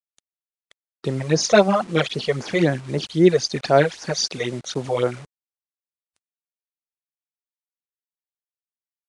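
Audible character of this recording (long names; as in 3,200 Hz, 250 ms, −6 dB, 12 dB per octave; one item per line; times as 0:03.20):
phaser sweep stages 12, 3.8 Hz, lowest notch 260–3,400 Hz
a quantiser's noise floor 8 bits, dither none
Ogg Vorbis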